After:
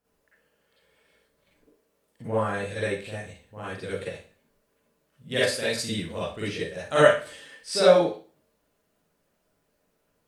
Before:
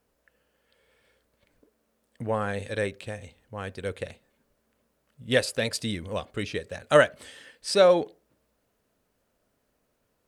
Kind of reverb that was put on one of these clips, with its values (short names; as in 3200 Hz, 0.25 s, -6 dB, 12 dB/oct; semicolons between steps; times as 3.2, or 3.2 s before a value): Schroeder reverb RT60 0.38 s, DRR -9.5 dB; gain -8.5 dB